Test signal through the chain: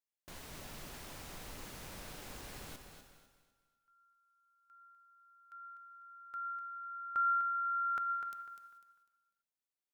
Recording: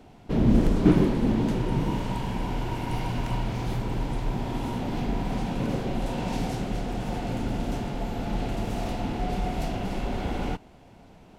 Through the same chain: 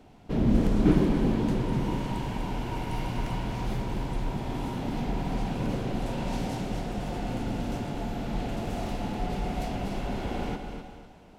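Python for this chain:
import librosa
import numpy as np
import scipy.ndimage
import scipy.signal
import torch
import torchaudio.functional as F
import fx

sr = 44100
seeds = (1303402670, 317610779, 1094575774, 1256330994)

y = fx.echo_feedback(x, sr, ms=249, feedback_pct=31, wet_db=-8.5)
y = fx.rev_gated(y, sr, seeds[0], gate_ms=460, shape='flat', drr_db=9.5)
y = F.gain(torch.from_numpy(y), -3.0).numpy()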